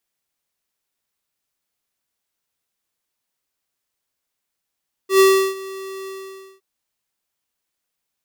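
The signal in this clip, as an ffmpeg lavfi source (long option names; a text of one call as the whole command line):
ffmpeg -f lavfi -i "aevalsrc='0.299*(2*lt(mod(385*t,1),0.5)-1)':duration=1.515:sample_rate=44100,afade=type=in:duration=0.107,afade=type=out:start_time=0.107:duration=0.346:silence=0.0891,afade=type=out:start_time=0.98:duration=0.535" out.wav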